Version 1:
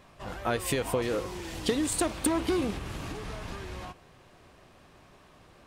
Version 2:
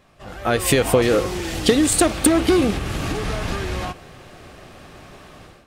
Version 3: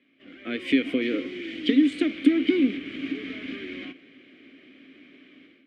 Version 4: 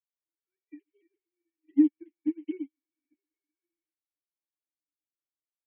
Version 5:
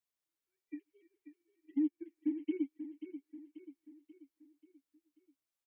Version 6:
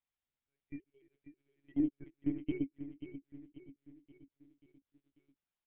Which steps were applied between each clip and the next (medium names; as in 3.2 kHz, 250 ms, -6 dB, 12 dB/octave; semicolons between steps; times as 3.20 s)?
band-stop 980 Hz, Q 8.4; level rider gain up to 14 dB
vowel filter i; three-band isolator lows -14 dB, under 250 Hz, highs -14 dB, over 3.6 kHz; trim +7.5 dB
formants replaced by sine waves; chorus voices 4, 0.41 Hz, delay 11 ms, depth 1.8 ms; upward expansion 2.5:1, over -43 dBFS; trim -2.5 dB
compression 2.5:1, threshold -29 dBFS, peak gain reduction 9.5 dB; peak limiter -27.5 dBFS, peak gain reduction 8 dB; feedback delay 536 ms, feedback 49%, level -11 dB; trim +2.5 dB
monotone LPC vocoder at 8 kHz 140 Hz